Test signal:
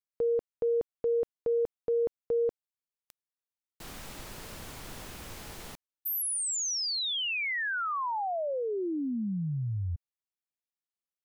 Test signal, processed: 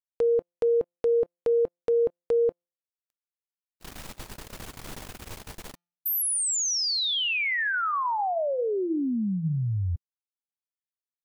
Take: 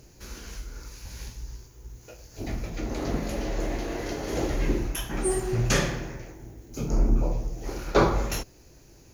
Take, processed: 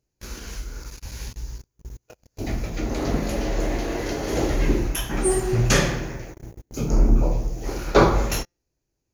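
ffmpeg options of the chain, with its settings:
-af "bandreject=f=173.3:t=h:w=4,bandreject=f=346.6:t=h:w=4,bandreject=f=519.9:t=h:w=4,bandreject=f=693.2:t=h:w=4,bandreject=f=866.5:t=h:w=4,bandreject=f=1.0398k:t=h:w=4,bandreject=f=1.2131k:t=h:w=4,bandreject=f=1.3864k:t=h:w=4,bandreject=f=1.5597k:t=h:w=4,bandreject=f=1.733k:t=h:w=4,bandreject=f=1.9063k:t=h:w=4,bandreject=f=2.0796k:t=h:w=4,bandreject=f=2.2529k:t=h:w=4,bandreject=f=2.4262k:t=h:w=4,bandreject=f=2.5995k:t=h:w=4,bandreject=f=2.7728k:t=h:w=4,bandreject=f=2.9461k:t=h:w=4,bandreject=f=3.1194k:t=h:w=4,bandreject=f=3.2927k:t=h:w=4,bandreject=f=3.466k:t=h:w=4,bandreject=f=3.6393k:t=h:w=4,bandreject=f=3.8126k:t=h:w=4,bandreject=f=3.9859k:t=h:w=4,bandreject=f=4.1592k:t=h:w=4,bandreject=f=4.3325k:t=h:w=4,bandreject=f=4.5058k:t=h:w=4,bandreject=f=4.6791k:t=h:w=4,bandreject=f=4.8524k:t=h:w=4,bandreject=f=5.0257k:t=h:w=4,bandreject=f=5.199k:t=h:w=4,bandreject=f=5.3723k:t=h:w=4,bandreject=f=5.5456k:t=h:w=4,bandreject=f=5.7189k:t=h:w=4,bandreject=f=5.8922k:t=h:w=4,bandreject=f=6.0655k:t=h:w=4,bandreject=f=6.2388k:t=h:w=4,bandreject=f=6.4121k:t=h:w=4,bandreject=f=6.5854k:t=h:w=4,agate=range=-31dB:threshold=-44dB:ratio=16:release=30:detection=rms,volume=5dB"

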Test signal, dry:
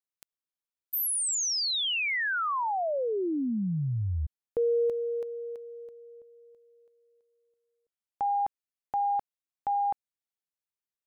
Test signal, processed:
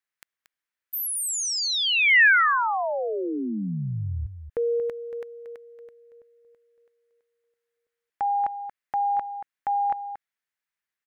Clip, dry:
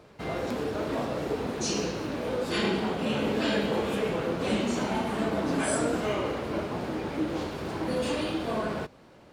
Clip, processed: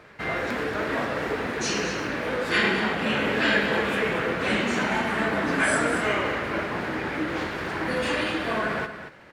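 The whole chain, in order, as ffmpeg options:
-filter_complex "[0:a]equalizer=f=1.8k:t=o:w=1.2:g=14,asplit=2[a][b];[b]aecho=0:1:231:0.299[c];[a][c]amix=inputs=2:normalize=0"

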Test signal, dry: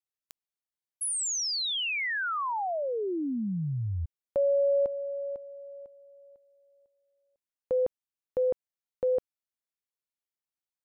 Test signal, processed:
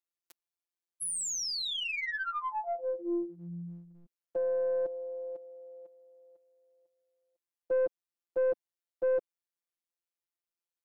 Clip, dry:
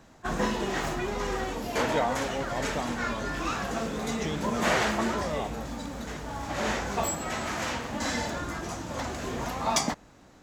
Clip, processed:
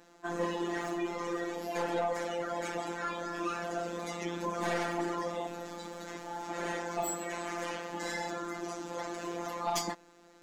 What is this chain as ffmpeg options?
-af "afftfilt=real='hypot(re,im)*cos(PI*b)':imag='0':win_size=1024:overlap=0.75,lowshelf=f=190:t=q:w=1.5:g=-11.5,aeval=exprs='(tanh(12.6*val(0)+0.15)-tanh(0.15))/12.6':c=same"

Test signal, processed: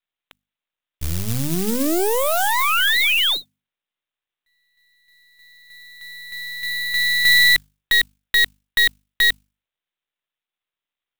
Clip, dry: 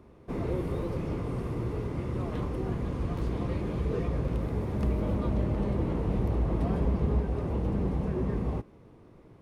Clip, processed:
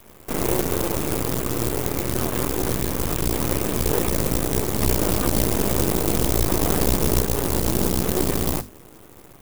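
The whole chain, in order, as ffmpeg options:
-af "apsyclip=20dB,lowpass=f=1.9k:p=1,aresample=8000,aeval=exprs='max(val(0),0)':c=same,aresample=44100,bandreject=f=50:t=h:w=6,bandreject=f=100:t=h:w=6,bandreject=f=150:t=h:w=6,bandreject=f=200:t=h:w=6,bandreject=f=250:t=h:w=6,acrusher=bits=6:mode=log:mix=0:aa=0.000001,crystalizer=i=9:c=0,adynamicequalizer=threshold=0.0398:dfrequency=350:dqfactor=1.2:tfrequency=350:tqfactor=1.2:attack=5:release=100:ratio=0.375:range=2:mode=boostabove:tftype=bell,volume=-11dB"

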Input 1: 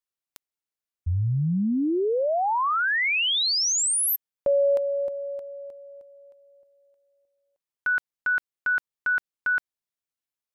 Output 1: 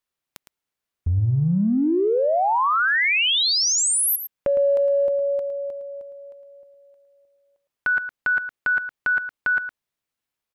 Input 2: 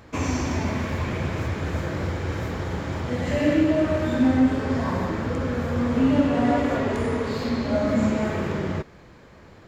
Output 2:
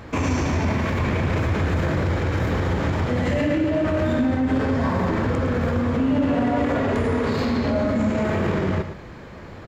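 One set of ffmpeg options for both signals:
-af "bass=f=250:g=1,treble=f=4k:g=-5,acompressor=threshold=-27dB:ratio=6:attack=1.9:release=35:knee=1:detection=rms,aecho=1:1:110:0.299,volume=8.5dB"

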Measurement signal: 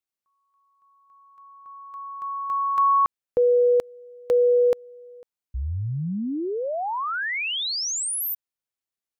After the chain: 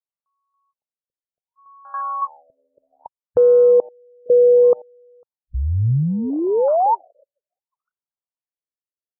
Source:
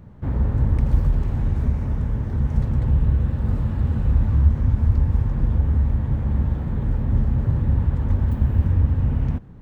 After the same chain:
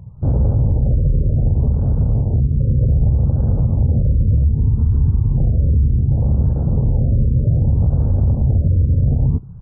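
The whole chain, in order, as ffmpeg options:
-af "afwtdn=0.0316,equalizer=f=125:t=o:w=1:g=6,equalizer=f=250:t=o:w=1:g=-3,equalizer=f=500:t=o:w=1:g=5,equalizer=f=1k:t=o:w=1:g=7,alimiter=level_in=12.5dB:limit=-1dB:release=50:level=0:latency=1,afftfilt=real='re*lt(b*sr/1024,590*pow(1700/590,0.5+0.5*sin(2*PI*0.65*pts/sr)))':imag='im*lt(b*sr/1024,590*pow(1700/590,0.5+0.5*sin(2*PI*0.65*pts/sr)))':win_size=1024:overlap=0.75,volume=-7dB"

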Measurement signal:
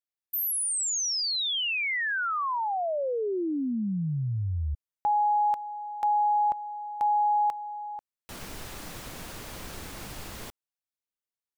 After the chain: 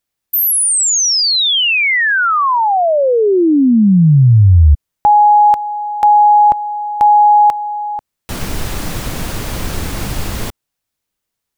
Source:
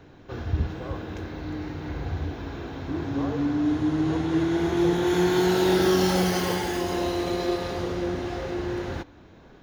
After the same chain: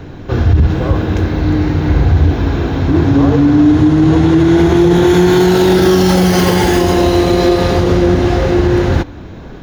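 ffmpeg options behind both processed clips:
-af "lowshelf=f=240:g=8,alimiter=level_in=16.5dB:limit=-1dB:release=50:level=0:latency=1,volume=-1dB"

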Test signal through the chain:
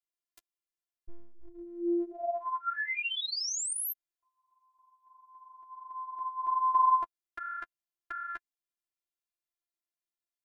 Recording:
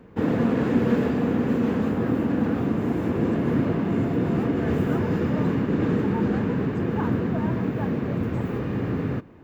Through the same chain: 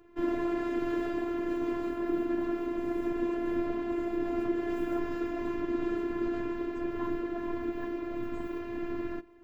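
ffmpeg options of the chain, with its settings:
-af "flanger=delay=5:depth=5.5:regen=12:speed=1.5:shape=sinusoidal,afftfilt=real='hypot(re,im)*cos(PI*b)':imag='0':win_size=512:overlap=0.75"

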